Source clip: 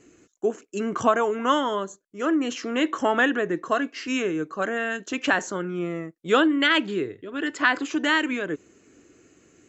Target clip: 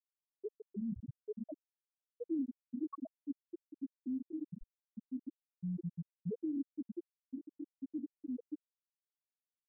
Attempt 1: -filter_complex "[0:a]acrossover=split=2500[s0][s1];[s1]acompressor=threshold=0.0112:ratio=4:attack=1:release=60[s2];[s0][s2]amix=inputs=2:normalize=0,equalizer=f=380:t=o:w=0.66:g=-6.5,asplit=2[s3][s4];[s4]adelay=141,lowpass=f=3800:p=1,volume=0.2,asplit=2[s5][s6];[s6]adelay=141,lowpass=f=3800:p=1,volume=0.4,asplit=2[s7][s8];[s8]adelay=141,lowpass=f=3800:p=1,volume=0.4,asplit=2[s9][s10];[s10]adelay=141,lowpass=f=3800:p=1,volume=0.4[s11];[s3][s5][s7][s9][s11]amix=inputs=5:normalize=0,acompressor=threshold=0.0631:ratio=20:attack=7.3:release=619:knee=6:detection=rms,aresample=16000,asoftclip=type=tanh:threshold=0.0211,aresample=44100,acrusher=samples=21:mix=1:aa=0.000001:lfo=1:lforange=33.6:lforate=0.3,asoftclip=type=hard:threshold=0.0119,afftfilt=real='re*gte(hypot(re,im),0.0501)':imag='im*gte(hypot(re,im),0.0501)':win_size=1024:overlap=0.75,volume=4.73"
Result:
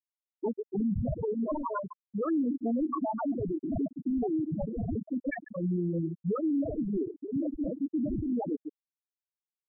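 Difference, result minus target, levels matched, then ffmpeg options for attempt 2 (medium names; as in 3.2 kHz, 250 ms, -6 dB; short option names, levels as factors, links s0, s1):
saturation: distortion -6 dB
-filter_complex "[0:a]acrossover=split=2500[s0][s1];[s1]acompressor=threshold=0.0112:ratio=4:attack=1:release=60[s2];[s0][s2]amix=inputs=2:normalize=0,equalizer=f=380:t=o:w=0.66:g=-6.5,asplit=2[s3][s4];[s4]adelay=141,lowpass=f=3800:p=1,volume=0.2,asplit=2[s5][s6];[s6]adelay=141,lowpass=f=3800:p=1,volume=0.4,asplit=2[s7][s8];[s8]adelay=141,lowpass=f=3800:p=1,volume=0.4,asplit=2[s9][s10];[s10]adelay=141,lowpass=f=3800:p=1,volume=0.4[s11];[s3][s5][s7][s9][s11]amix=inputs=5:normalize=0,acompressor=threshold=0.0631:ratio=20:attack=7.3:release=619:knee=6:detection=rms,aresample=16000,asoftclip=type=tanh:threshold=0.00562,aresample=44100,acrusher=samples=21:mix=1:aa=0.000001:lfo=1:lforange=33.6:lforate=0.3,asoftclip=type=hard:threshold=0.0119,afftfilt=real='re*gte(hypot(re,im),0.0501)':imag='im*gte(hypot(re,im),0.0501)':win_size=1024:overlap=0.75,volume=4.73"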